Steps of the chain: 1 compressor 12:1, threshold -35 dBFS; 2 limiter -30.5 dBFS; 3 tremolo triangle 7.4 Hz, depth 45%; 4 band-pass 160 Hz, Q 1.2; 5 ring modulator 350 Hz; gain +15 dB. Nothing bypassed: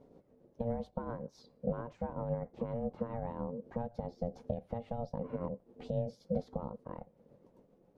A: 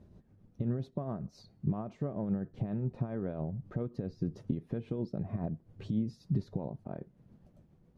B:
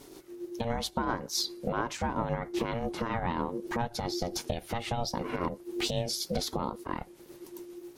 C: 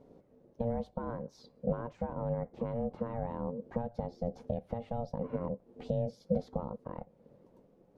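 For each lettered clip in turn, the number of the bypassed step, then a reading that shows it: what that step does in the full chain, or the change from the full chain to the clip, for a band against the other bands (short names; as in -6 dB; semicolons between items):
5, crest factor change -2.0 dB; 4, 2 kHz band +16.0 dB; 3, loudness change +2.5 LU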